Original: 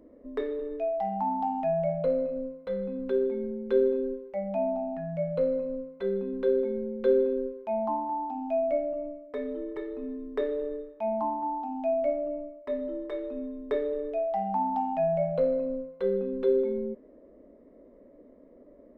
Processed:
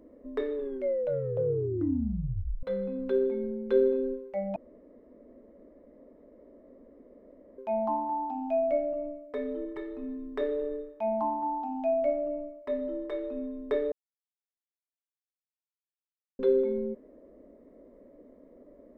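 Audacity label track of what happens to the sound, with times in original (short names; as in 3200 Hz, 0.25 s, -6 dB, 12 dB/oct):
0.540000	0.540000	tape stop 2.09 s
4.560000	7.580000	room tone
9.650000	10.410000	bell 480 Hz -13 dB 0.24 oct
13.920000	16.390000	mute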